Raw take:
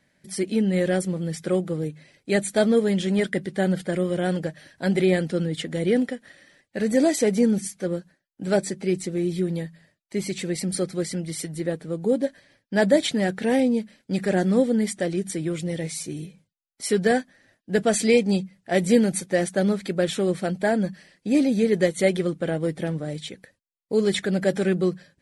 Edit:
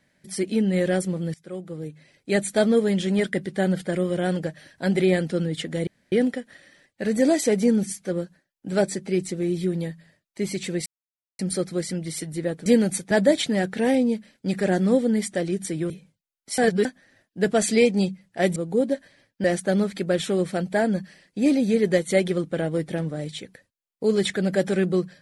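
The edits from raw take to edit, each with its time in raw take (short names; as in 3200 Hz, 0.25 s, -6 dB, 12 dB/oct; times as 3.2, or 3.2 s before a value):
1.34–2.38 fade in, from -21.5 dB
5.87 insert room tone 0.25 s
10.61 insert silence 0.53 s
11.88–12.76 swap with 18.88–19.33
15.55–16.22 cut
16.9–17.17 reverse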